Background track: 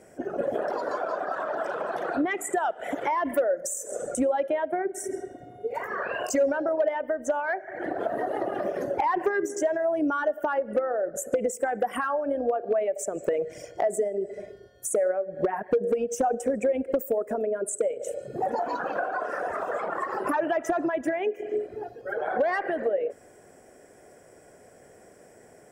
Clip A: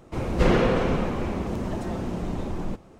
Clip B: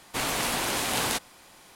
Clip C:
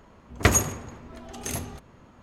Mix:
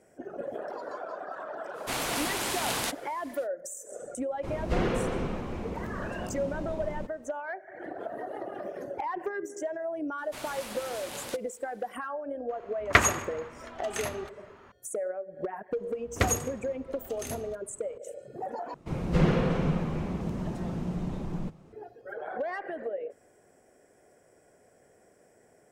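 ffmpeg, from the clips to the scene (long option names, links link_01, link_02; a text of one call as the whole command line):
ffmpeg -i bed.wav -i cue0.wav -i cue1.wav -i cue2.wav -filter_complex "[2:a]asplit=2[link_01][link_02];[1:a]asplit=2[link_03][link_04];[3:a]asplit=2[link_05][link_06];[0:a]volume=-8.5dB[link_07];[link_05]equalizer=frequency=1600:width_type=o:width=2.9:gain=14[link_08];[link_04]equalizer=frequency=160:width=3.7:gain=13[link_09];[link_07]asplit=2[link_10][link_11];[link_10]atrim=end=18.744[link_12];[link_09]atrim=end=2.99,asetpts=PTS-STARTPTS,volume=-7dB[link_13];[link_11]atrim=start=21.726[link_14];[link_01]atrim=end=1.75,asetpts=PTS-STARTPTS,volume=-3.5dB,afade=type=in:duration=0.05,afade=type=out:start_time=1.7:duration=0.05,adelay=1730[link_15];[link_03]atrim=end=2.99,asetpts=PTS-STARTPTS,volume=-8dB,afade=type=in:duration=0.004:curve=hsin,afade=type=out:start_time=2.986:duration=0.004:curve=hsin,adelay=4310[link_16];[link_02]atrim=end=1.75,asetpts=PTS-STARTPTS,volume=-13.5dB,afade=type=in:duration=0.004:curve=hsin,afade=type=out:start_time=1.746:duration=0.004:curve=hsin,adelay=448938S[link_17];[link_08]atrim=end=2.22,asetpts=PTS-STARTPTS,volume=-9dB,afade=type=in:duration=0.004:curve=hsin,afade=type=out:start_time=2.216:duration=0.004:curve=hsin,adelay=12500[link_18];[link_06]atrim=end=2.22,asetpts=PTS-STARTPTS,volume=-7dB,afade=type=in:duration=0.004:curve=hsin,afade=type=out:start_time=2.216:duration=0.004:curve=hsin,adelay=15760[link_19];[link_12][link_13]acrossfade=duration=0.004:curve1=hsin:curve2=hsin[link_20];[link_20][link_14]acrossfade=duration=0.004:curve1=hsin:curve2=hsin[link_21];[link_21][link_15][link_16][link_17][link_18][link_19]amix=inputs=6:normalize=0" out.wav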